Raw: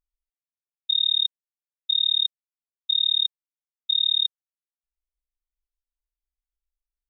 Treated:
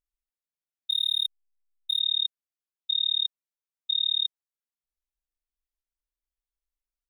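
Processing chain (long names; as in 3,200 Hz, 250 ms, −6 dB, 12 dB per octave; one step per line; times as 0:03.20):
0:00.90–0:02.00: slack as between gear wheels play −31.5 dBFS
level −4 dB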